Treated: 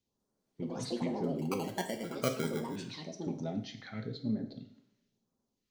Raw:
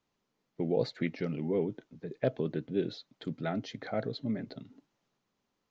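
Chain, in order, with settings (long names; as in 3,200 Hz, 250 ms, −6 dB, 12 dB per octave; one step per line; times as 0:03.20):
all-pass phaser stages 2, 0.98 Hz, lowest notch 440–2,500 Hz
0:01.68–0:02.76: sample-rate reduction 1,800 Hz, jitter 0%
delay with pitch and tempo change per echo 199 ms, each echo +6 semitones, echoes 2
coupled-rooms reverb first 0.55 s, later 1.6 s, from −20 dB, DRR 5 dB
level −3 dB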